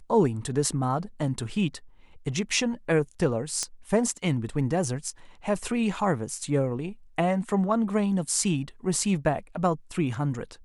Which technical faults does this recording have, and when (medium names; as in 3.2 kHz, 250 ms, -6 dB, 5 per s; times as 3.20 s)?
3.63 s: pop -15 dBFS